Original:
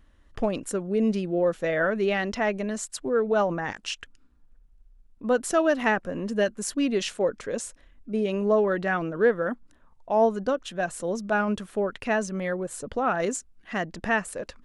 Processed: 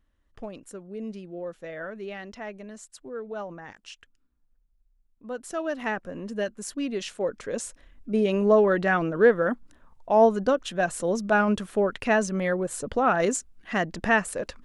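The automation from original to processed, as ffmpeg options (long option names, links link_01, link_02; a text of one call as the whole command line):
ffmpeg -i in.wav -af "volume=3dB,afade=type=in:start_time=5.3:duration=0.71:silence=0.446684,afade=type=in:start_time=7.08:duration=1.02:silence=0.398107" out.wav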